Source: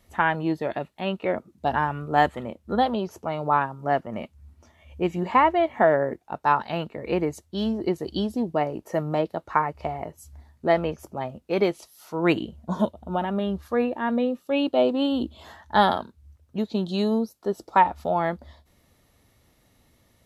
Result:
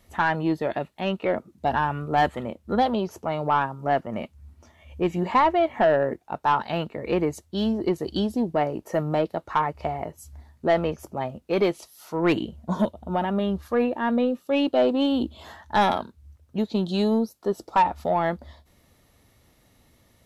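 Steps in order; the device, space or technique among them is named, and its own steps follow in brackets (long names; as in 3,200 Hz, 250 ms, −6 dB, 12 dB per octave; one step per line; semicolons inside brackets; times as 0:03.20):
saturation between pre-emphasis and de-emphasis (high-shelf EQ 3,200 Hz +11.5 dB; soft clipping −13.5 dBFS, distortion −14 dB; high-shelf EQ 3,200 Hz −11.5 dB)
level +2 dB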